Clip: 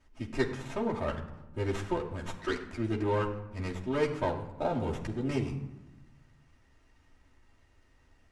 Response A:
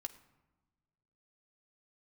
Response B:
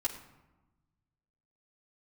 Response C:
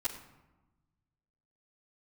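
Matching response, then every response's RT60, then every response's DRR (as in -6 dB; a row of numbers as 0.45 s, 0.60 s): B; no single decay rate, 1.1 s, 1.1 s; 5.0 dB, -4.5 dB, -14.0 dB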